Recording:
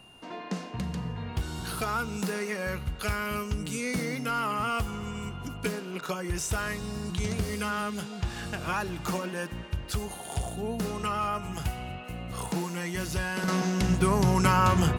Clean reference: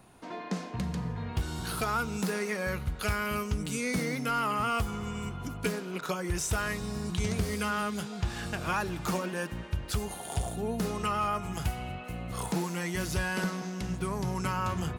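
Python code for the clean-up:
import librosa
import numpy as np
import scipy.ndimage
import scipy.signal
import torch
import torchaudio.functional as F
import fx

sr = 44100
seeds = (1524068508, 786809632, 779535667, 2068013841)

y = fx.notch(x, sr, hz=2800.0, q=30.0)
y = fx.gain(y, sr, db=fx.steps((0.0, 0.0), (13.48, -9.0)))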